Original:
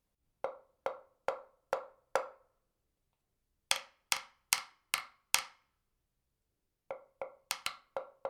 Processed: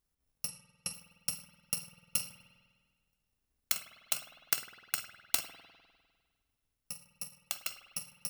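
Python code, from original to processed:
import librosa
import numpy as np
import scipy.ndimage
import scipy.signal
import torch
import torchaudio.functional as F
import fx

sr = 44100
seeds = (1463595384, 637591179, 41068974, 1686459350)

y = fx.bit_reversed(x, sr, seeds[0], block=128)
y = fx.brickwall_lowpass(y, sr, high_hz=12000.0, at=(0.48, 0.94))
y = fx.rev_spring(y, sr, rt60_s=1.6, pass_ms=(50,), chirp_ms=75, drr_db=9.0)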